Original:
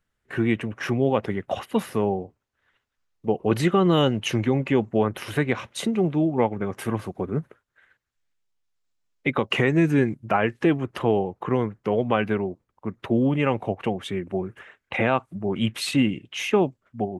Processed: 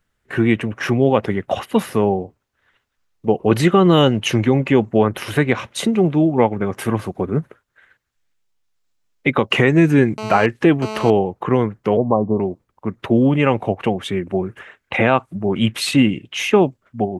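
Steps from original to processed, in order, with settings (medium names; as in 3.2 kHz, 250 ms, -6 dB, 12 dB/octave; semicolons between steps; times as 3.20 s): 10.18–11.10 s: mobile phone buzz -34 dBFS; 11.97–12.40 s: Chebyshev low-pass 1.1 kHz, order 8; trim +6.5 dB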